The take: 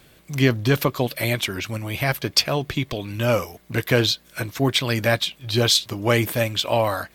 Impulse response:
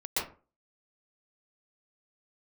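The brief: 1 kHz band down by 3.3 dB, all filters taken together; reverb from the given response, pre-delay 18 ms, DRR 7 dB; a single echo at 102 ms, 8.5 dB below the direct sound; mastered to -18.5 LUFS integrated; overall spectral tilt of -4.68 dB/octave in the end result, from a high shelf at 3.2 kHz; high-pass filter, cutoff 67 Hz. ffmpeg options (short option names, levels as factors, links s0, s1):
-filter_complex "[0:a]highpass=67,equalizer=f=1000:t=o:g=-3.5,highshelf=f=3200:g=-8.5,aecho=1:1:102:0.376,asplit=2[s0][s1];[1:a]atrim=start_sample=2205,adelay=18[s2];[s1][s2]afir=irnorm=-1:irlink=0,volume=0.188[s3];[s0][s3]amix=inputs=2:normalize=0,volume=1.68"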